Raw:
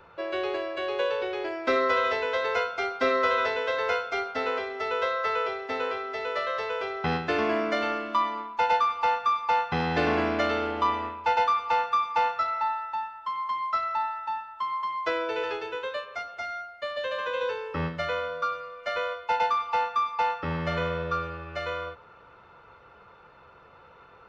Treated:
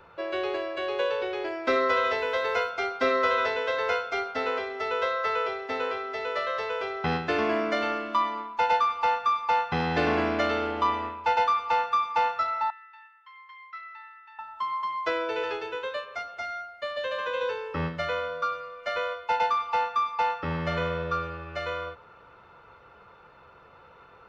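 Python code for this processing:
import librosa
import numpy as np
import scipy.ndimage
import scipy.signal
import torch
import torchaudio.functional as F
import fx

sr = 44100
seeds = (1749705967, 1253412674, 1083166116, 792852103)

y = fx.dmg_noise_colour(x, sr, seeds[0], colour='pink', level_db=-64.0, at=(2.17, 2.69), fade=0.02)
y = fx.ladder_bandpass(y, sr, hz=2200.0, resonance_pct=55, at=(12.7, 14.39))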